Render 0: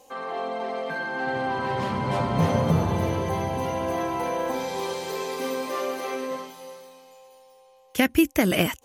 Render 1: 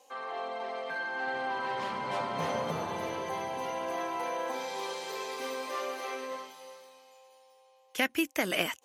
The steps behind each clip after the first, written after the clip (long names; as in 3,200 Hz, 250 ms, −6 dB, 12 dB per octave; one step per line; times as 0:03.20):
meter weighting curve A
level −5 dB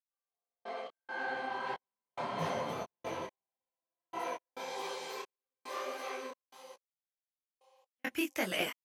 gate pattern "...x.xxx..xxx.x." 69 BPM −60 dB
micro pitch shift up and down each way 57 cents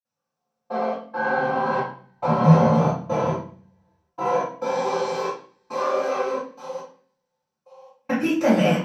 in parallel at −2.5 dB: downward compressor, threshold −44 dBFS, peak gain reduction 14.5 dB
on the sum: convolution reverb RT60 0.45 s, pre-delay 46 ms
level +3.5 dB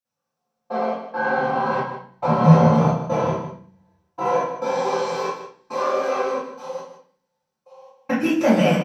single-tap delay 154 ms −11.5 dB
level +1.5 dB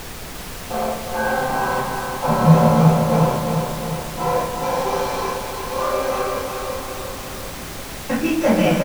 background noise pink −33 dBFS
repeating echo 353 ms, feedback 57%, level −6 dB